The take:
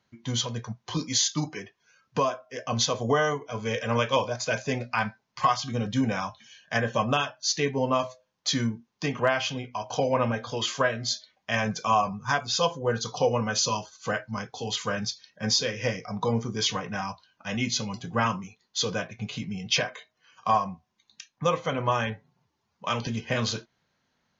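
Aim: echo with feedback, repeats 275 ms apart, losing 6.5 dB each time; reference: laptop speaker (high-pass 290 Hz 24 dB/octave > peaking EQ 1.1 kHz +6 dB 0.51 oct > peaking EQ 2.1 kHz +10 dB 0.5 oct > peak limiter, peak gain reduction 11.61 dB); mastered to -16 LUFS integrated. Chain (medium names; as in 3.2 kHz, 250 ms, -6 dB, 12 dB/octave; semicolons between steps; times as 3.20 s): high-pass 290 Hz 24 dB/octave; peaking EQ 1.1 kHz +6 dB 0.51 oct; peaking EQ 2.1 kHz +10 dB 0.5 oct; feedback delay 275 ms, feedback 47%, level -6.5 dB; trim +12 dB; peak limiter -5 dBFS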